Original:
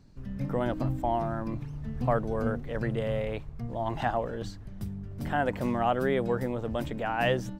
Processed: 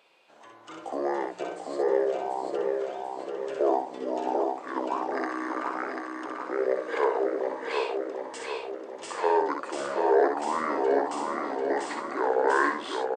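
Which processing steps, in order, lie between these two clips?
high-pass 780 Hz 24 dB/octave; in parallel at -1.5 dB: compression, threshold -40 dBFS, peak gain reduction 14 dB; on the sum: doubling 36 ms -5 dB; feedback delay 427 ms, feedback 52%, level -4 dB; speed mistake 78 rpm record played at 45 rpm; trim +4.5 dB

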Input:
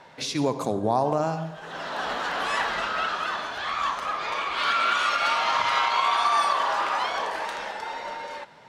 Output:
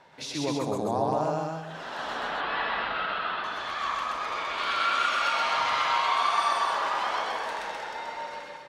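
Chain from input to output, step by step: 2.15–3.44 s: steep low-pass 4.1 kHz 36 dB/octave; loudspeakers at several distances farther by 43 m 0 dB, 88 m -3 dB; trim -6.5 dB

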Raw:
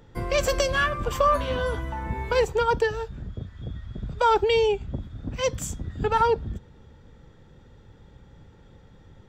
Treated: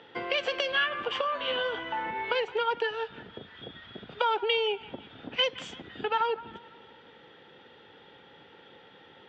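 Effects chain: compression 6:1, threshold -31 dBFS, peak gain reduction 13.5 dB; cabinet simulation 490–3800 Hz, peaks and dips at 600 Hz -5 dB, 1.1 kHz -6 dB, 3 kHz +8 dB; on a send: feedback echo behind a band-pass 168 ms, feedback 50%, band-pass 1.4 kHz, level -16 dB; on the sum: trim +8.5 dB

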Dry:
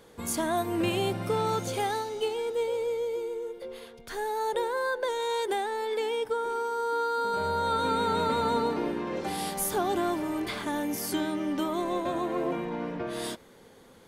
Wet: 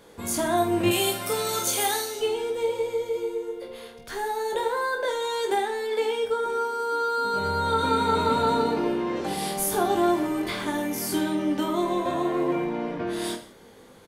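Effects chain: 0.91–2.20 s: RIAA curve recording; on a send: reverse bouncing-ball echo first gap 20 ms, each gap 1.3×, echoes 5; on the sum: trim +1.5 dB

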